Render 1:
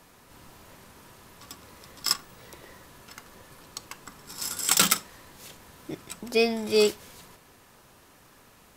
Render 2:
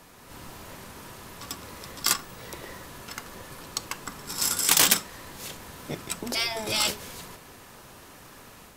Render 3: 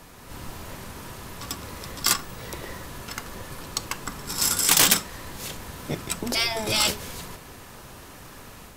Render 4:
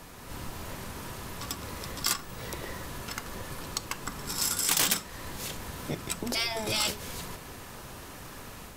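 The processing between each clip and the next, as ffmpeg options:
ffmpeg -i in.wav -af "dynaudnorm=framelen=160:gausssize=3:maxgain=4dB,afftfilt=real='re*lt(hypot(re,im),0.2)':imag='im*lt(hypot(re,im),0.2)':win_size=1024:overlap=0.75,volume=3.5dB" out.wav
ffmpeg -i in.wav -filter_complex "[0:a]lowshelf=frequency=110:gain=7.5,asplit=2[link_01][link_02];[link_02]asoftclip=type=hard:threshold=-19dB,volume=-4dB[link_03];[link_01][link_03]amix=inputs=2:normalize=0,volume=-1dB" out.wav
ffmpeg -i in.wav -af "acompressor=threshold=-36dB:ratio=1.5" out.wav

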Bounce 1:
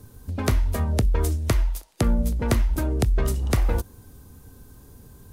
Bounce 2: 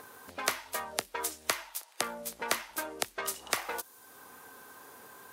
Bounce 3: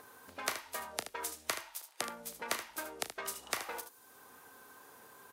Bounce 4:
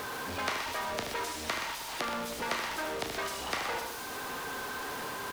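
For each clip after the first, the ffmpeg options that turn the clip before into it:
ffmpeg -i in.wav -filter_complex "[0:a]highpass=900,acrossover=split=2500[link_01][link_02];[link_01]acompressor=mode=upward:threshold=-42dB:ratio=2.5[link_03];[link_03][link_02]amix=inputs=2:normalize=0,volume=1dB" out.wav
ffmpeg -i in.wav -af "aecho=1:1:35|76:0.211|0.316,volume=-5.5dB" out.wav
ffmpeg -i in.wav -filter_complex "[0:a]aeval=exprs='val(0)+0.5*0.0266*sgn(val(0))':channel_layout=same,acrossover=split=5800[link_01][link_02];[link_02]acompressor=threshold=-48dB:ratio=4:attack=1:release=60[link_03];[link_01][link_03]amix=inputs=2:normalize=0,aecho=1:1:124:0.376" out.wav

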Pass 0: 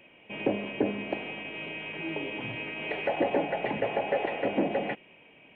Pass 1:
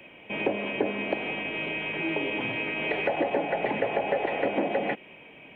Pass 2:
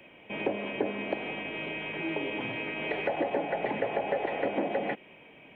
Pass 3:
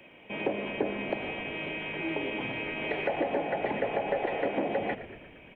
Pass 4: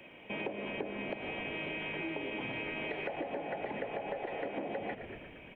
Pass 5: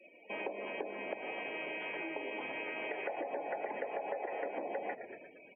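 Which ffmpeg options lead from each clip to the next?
ffmpeg -i in.wav -filter_complex "[0:a]bandreject=frequency=2800:width=23,acrossover=split=200|490[link_01][link_02][link_03];[link_01]acompressor=threshold=-53dB:ratio=4[link_04];[link_02]acompressor=threshold=-38dB:ratio=4[link_05];[link_03]acompressor=threshold=-34dB:ratio=4[link_06];[link_04][link_05][link_06]amix=inputs=3:normalize=0,volume=7dB" out.wav
ffmpeg -i in.wav -af "equalizer=frequency=2600:width=3.6:gain=-3,volume=-3dB" out.wav
ffmpeg -i in.wav -filter_complex "[0:a]asplit=8[link_01][link_02][link_03][link_04][link_05][link_06][link_07][link_08];[link_02]adelay=116,afreqshift=-55,volume=-13.5dB[link_09];[link_03]adelay=232,afreqshift=-110,volume=-17.5dB[link_10];[link_04]adelay=348,afreqshift=-165,volume=-21.5dB[link_11];[link_05]adelay=464,afreqshift=-220,volume=-25.5dB[link_12];[link_06]adelay=580,afreqshift=-275,volume=-29.6dB[link_13];[link_07]adelay=696,afreqshift=-330,volume=-33.6dB[link_14];[link_08]adelay=812,afreqshift=-385,volume=-37.6dB[link_15];[link_01][link_09][link_10][link_11][link_12][link_13][link_14][link_15]amix=inputs=8:normalize=0" out.wav
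ffmpeg -i in.wav -af "acompressor=threshold=-35dB:ratio=6" out.wav
ffmpeg -i in.wav -af "afftdn=noise_reduction=36:noise_floor=-49,highpass=430,lowpass=2400,volume=1.5dB" out.wav

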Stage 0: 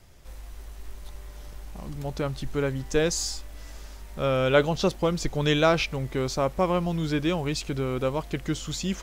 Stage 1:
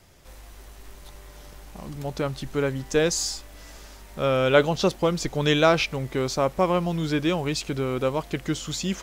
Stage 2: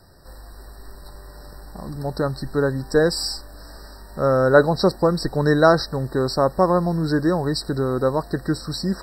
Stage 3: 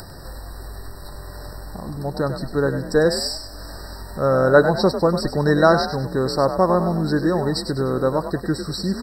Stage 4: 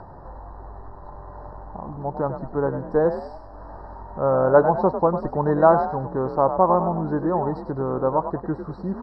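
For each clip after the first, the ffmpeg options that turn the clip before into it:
ffmpeg -i in.wav -af "lowshelf=frequency=73:gain=-10.5,volume=2.5dB" out.wav
ffmpeg -i in.wav -af "afftfilt=real='re*eq(mod(floor(b*sr/1024/1900),2),0)':imag='im*eq(mod(floor(b*sr/1024/1900),2),0)':win_size=1024:overlap=0.75,volume=4.5dB" out.wav
ffmpeg -i in.wav -filter_complex "[0:a]acompressor=mode=upward:threshold=-27dB:ratio=2.5,asplit=5[link_01][link_02][link_03][link_04][link_05];[link_02]adelay=99,afreqshift=43,volume=-9.5dB[link_06];[link_03]adelay=198,afreqshift=86,volume=-17.9dB[link_07];[link_04]adelay=297,afreqshift=129,volume=-26.3dB[link_08];[link_05]adelay=396,afreqshift=172,volume=-34.7dB[link_09];[link_01][link_06][link_07][link_08][link_09]amix=inputs=5:normalize=0" out.wav
ffmpeg -i in.wav -af "lowpass=frequency=920:width_type=q:width=3.5,volume=-5dB" out.wav

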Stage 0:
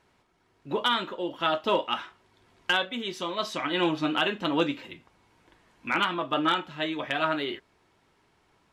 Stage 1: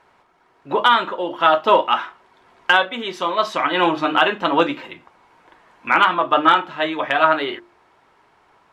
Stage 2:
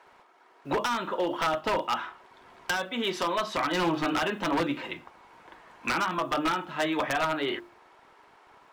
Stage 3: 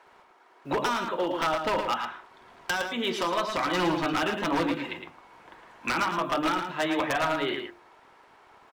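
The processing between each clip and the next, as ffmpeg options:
ffmpeg -i in.wav -af "equalizer=frequency=990:width_type=o:width=2.7:gain=12.5,bandreject=frequency=50:width_type=h:width=6,bandreject=frequency=100:width_type=h:width=6,bandreject=frequency=150:width_type=h:width=6,bandreject=frequency=200:width_type=h:width=6,bandreject=frequency=250:width_type=h:width=6,bandreject=frequency=300:width_type=h:width=6,bandreject=frequency=350:width_type=h:width=6,volume=1dB" out.wav
ffmpeg -i in.wav -filter_complex "[0:a]acrossover=split=250[link_01][link_02];[link_01]acrusher=bits=10:mix=0:aa=0.000001[link_03];[link_02]acompressor=threshold=-24dB:ratio=6[link_04];[link_03][link_04]amix=inputs=2:normalize=0,aeval=exprs='0.1*(abs(mod(val(0)/0.1+3,4)-2)-1)':channel_layout=same" out.wav
ffmpeg -i in.wav -filter_complex "[0:a]asplit=2[link_01][link_02];[link_02]adelay=110.8,volume=-6dB,highshelf=frequency=4000:gain=-2.49[link_03];[link_01][link_03]amix=inputs=2:normalize=0" out.wav

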